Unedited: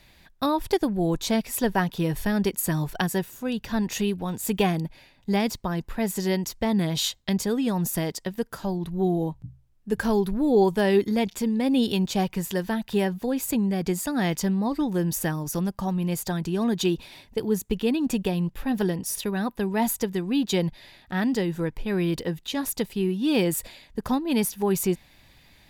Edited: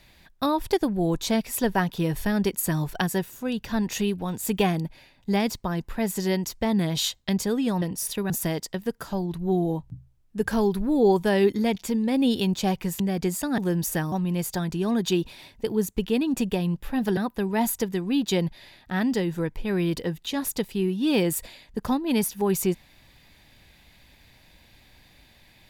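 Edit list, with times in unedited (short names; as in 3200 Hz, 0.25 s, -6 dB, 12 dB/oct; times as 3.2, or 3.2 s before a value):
12.52–13.64 cut
14.22–14.87 cut
15.41–15.85 cut
18.9–19.38 move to 7.82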